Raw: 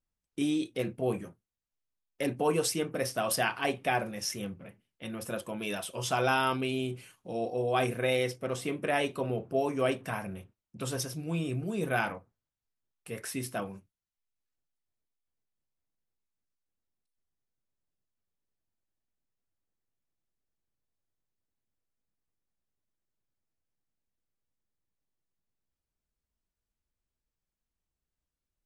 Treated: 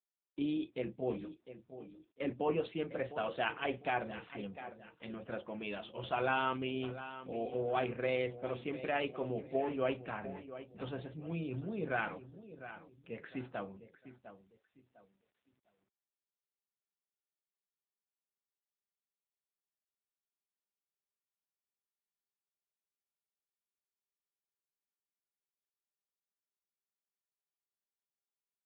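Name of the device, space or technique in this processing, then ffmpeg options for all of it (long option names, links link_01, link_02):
mobile call with aggressive noise cancelling: -af "highpass=frequency=150:poles=1,aecho=1:1:703|1406|2109:0.224|0.0761|0.0259,afftdn=noise_reduction=13:noise_floor=-57,volume=-4.5dB" -ar 8000 -c:a libopencore_amrnb -b:a 7950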